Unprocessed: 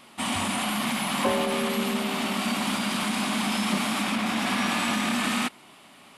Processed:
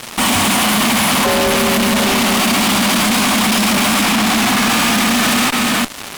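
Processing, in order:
delay that plays each chunk backwards 344 ms, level −11 dB
0:04.05–0:04.64: Chebyshev band-stop filter 330–710 Hz, order 2
fuzz pedal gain 49 dB, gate −47 dBFS

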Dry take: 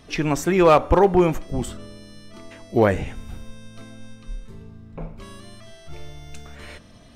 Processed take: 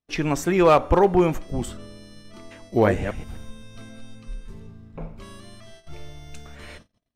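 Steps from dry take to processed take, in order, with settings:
0:02.59–0:04.72: delay that plays each chunk backwards 130 ms, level −8 dB
noise gate −43 dBFS, range −39 dB
level −1.5 dB

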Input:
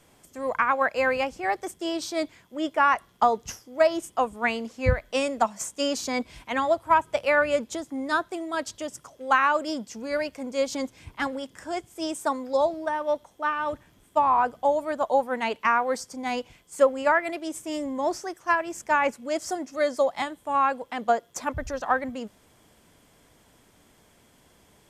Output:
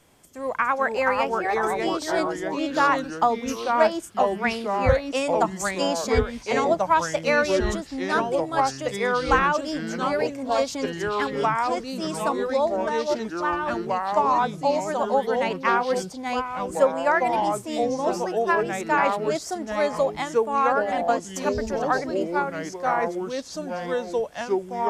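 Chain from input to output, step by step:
delay with pitch and tempo change per echo 365 ms, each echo −3 semitones, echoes 3

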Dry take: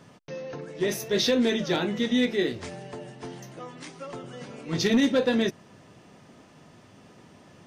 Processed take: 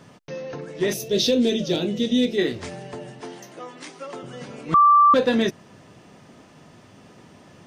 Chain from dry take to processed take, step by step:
0:00.93–0:02.38: flat-topped bell 1,300 Hz −12.5 dB
0:03.20–0:04.23: high-pass filter 250 Hz 12 dB per octave
0:04.74–0:05.14: beep over 1,170 Hz −14 dBFS
level +3.5 dB

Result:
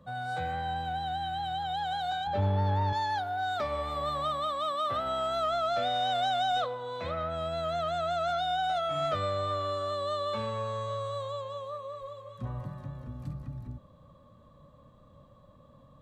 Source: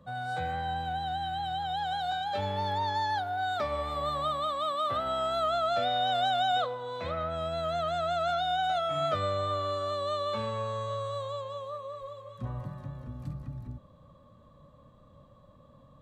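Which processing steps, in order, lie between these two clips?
0:02.27–0:02.93: spectral tilt −3.5 dB per octave
soft clipping −20 dBFS, distortion −22 dB

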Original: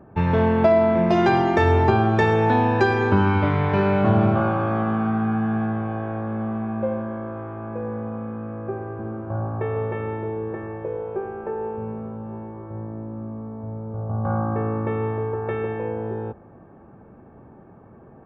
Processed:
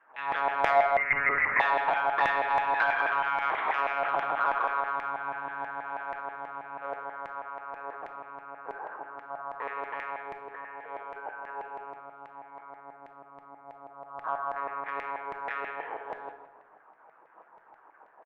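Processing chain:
one-pitch LPC vocoder at 8 kHz 140 Hz
on a send: single-tap delay 163 ms −14.5 dB
on the sum: auto-filter high-pass saw down 6.2 Hz 710–2,000 Hz
in parallel at −4 dB: soft clipping −13.5 dBFS, distortion −14 dB
on the sum: convolution reverb RT60 1.0 s, pre-delay 6 ms, DRR 7 dB
0:00.97–0:01.60: voice inversion scrambler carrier 2,800 Hz
level −8.5 dB

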